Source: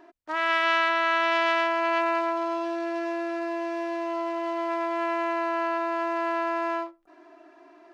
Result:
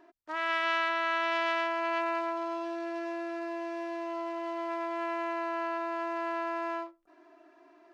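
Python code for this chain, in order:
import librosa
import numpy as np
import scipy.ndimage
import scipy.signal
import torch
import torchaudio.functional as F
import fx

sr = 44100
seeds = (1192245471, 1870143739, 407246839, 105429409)

y = fx.notch(x, sr, hz=790.0, q=12.0)
y = F.gain(torch.from_numpy(y), -6.0).numpy()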